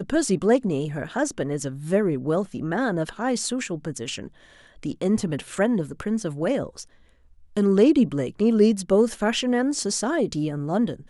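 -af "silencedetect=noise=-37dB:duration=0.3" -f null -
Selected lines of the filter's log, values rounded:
silence_start: 4.28
silence_end: 4.83 | silence_duration: 0.56
silence_start: 6.83
silence_end: 7.57 | silence_duration: 0.73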